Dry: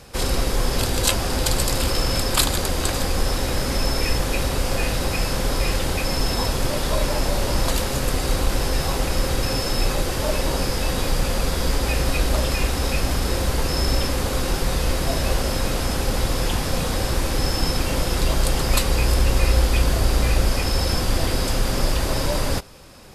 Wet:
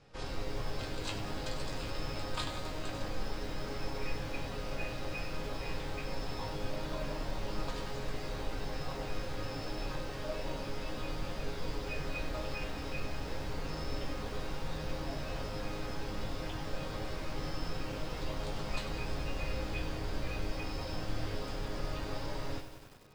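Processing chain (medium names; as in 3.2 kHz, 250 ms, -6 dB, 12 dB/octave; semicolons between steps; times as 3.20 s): distance through air 120 m; chord resonator G#2 sus4, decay 0.24 s; bit-crushed delay 96 ms, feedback 80%, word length 8-bit, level -11.5 dB; trim -3 dB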